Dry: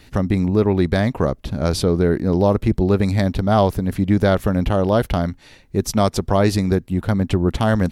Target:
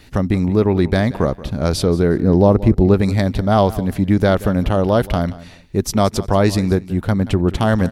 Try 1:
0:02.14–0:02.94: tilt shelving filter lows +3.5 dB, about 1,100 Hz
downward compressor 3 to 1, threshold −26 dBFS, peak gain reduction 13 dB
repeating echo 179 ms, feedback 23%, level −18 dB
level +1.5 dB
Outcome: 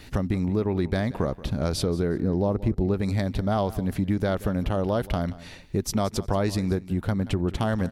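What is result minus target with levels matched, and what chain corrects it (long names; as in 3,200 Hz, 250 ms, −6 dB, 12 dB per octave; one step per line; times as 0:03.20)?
downward compressor: peak gain reduction +13 dB
0:02.14–0:02.94: tilt shelving filter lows +3.5 dB, about 1,100 Hz
repeating echo 179 ms, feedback 23%, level −18 dB
level +1.5 dB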